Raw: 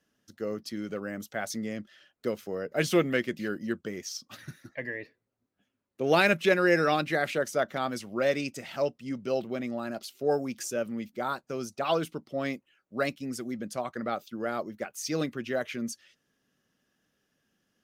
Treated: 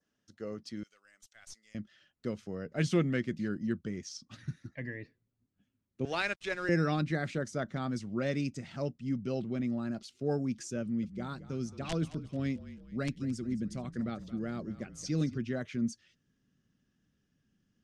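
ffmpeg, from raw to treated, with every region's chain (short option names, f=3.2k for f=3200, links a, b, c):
-filter_complex "[0:a]asettb=1/sr,asplit=3[a][b][c];[a]atrim=end=0.834[d];[b]atrim=start=0.83:end=1.75,asetpts=PTS-STARTPTS,afade=t=in:d=0.004:c=qsin,afade=t=out:st=0.916:d=0.004:c=qsin,highpass=f=710:p=1,aderivative,aeval=exprs='(tanh(50.1*val(0)+0.25)-tanh(0.25))/50.1':c=same[e];[c]atrim=start=1.746[f];[d][e]acrossfade=d=0.004:c1=hsin:c2=qsin[g];[g][f]acrossfade=d=0.004:c1=qsin:c2=hsin,asettb=1/sr,asplit=3[h][i][j];[h]atrim=end=6.054[k];[i]atrim=start=6.05:end=6.69,asetpts=PTS-STARTPTS,afade=t=in:d=0.004:c=qsin,afade=t=out:st=0.636:d=0.004:c=qsin,highpass=620,aeval=exprs='sgn(val(0))*max(abs(val(0))-0.00596,0)':c=same[l];[j]atrim=start=6.686[m];[k][l]acrossfade=d=0.004:c1=hsin:c2=qsin[n];[n][m]acrossfade=d=0.004:c1=qsin:c2=hsin,asettb=1/sr,asplit=3[o][p][q];[o]atrim=end=10.814[r];[p]atrim=start=10.81:end=15.38,asetpts=PTS-STARTPTS,afade=t=in:d=0.004:c=qsin,afade=t=out:st=4.566:d=0.004:c=qsin,equalizer=f=1k:w=0.92:g=-5.5,aeval=exprs='(mod(8.41*val(0)+1,2)-1)/8.41':c=same,asplit=5[s][t][u][v][w];[t]adelay=219,afreqshift=-39,volume=-15.5dB[x];[u]adelay=438,afreqshift=-78,volume=-23dB[y];[v]adelay=657,afreqshift=-117,volume=-30.6dB[z];[w]adelay=876,afreqshift=-156,volume=-38.1dB[aa];[s][x][y][z][aa]amix=inputs=5:normalize=0,atrim=end_sample=201537[ab];[q]atrim=start=15.376[ac];[r][ab]acrossfade=d=0.004:c1=hsin:c2=qsin[ad];[ad][ac]acrossfade=d=0.004:c1=qsin:c2=hsin,asubboost=boost=6:cutoff=230,lowpass=f=8.4k:w=0.5412,lowpass=f=8.4k:w=1.3066,adynamicequalizer=threshold=0.00282:dfrequency=2800:dqfactor=2.2:tfrequency=2800:tqfactor=2.2:attack=5:release=100:ratio=0.375:range=3:mode=cutabove:tftype=bell,volume=-6.5dB"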